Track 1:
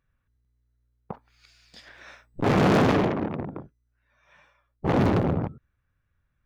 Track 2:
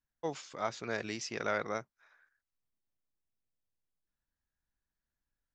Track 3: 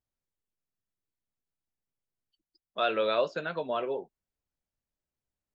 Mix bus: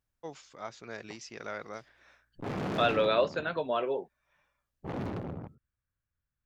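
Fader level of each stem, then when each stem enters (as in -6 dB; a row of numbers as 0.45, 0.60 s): -14.5, -6.0, +1.0 dB; 0.00, 0.00, 0.00 s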